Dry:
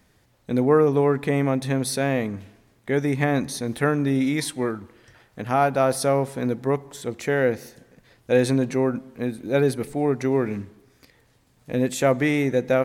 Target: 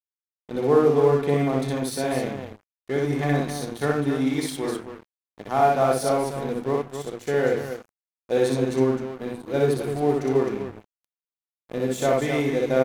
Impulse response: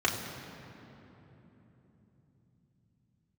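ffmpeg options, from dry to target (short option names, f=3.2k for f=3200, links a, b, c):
-filter_complex "[0:a]aecho=1:1:61.22|262.4:0.891|0.447,asplit=2[a][b];[1:a]atrim=start_sample=2205,atrim=end_sample=4410[c];[b][c]afir=irnorm=-1:irlink=0,volume=-12dB[d];[a][d]amix=inputs=2:normalize=0,aeval=exprs='sgn(val(0))*max(abs(val(0))-0.0266,0)':c=same,volume=-6dB"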